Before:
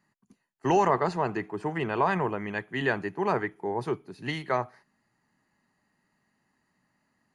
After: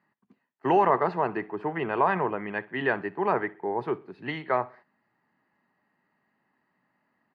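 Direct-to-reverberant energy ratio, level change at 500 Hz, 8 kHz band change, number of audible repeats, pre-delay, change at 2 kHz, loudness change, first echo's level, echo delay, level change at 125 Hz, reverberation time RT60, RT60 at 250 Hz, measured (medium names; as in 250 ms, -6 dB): no reverb, +1.5 dB, no reading, 2, no reverb, +1.0 dB, +1.0 dB, -22.0 dB, 63 ms, -4.0 dB, no reverb, no reverb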